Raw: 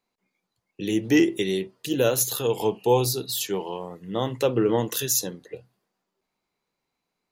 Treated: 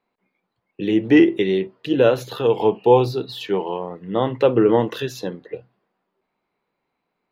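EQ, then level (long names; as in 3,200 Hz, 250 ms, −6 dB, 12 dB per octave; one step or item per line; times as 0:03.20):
high-frequency loss of the air 380 metres
low-shelf EQ 150 Hz −9 dB
+8.5 dB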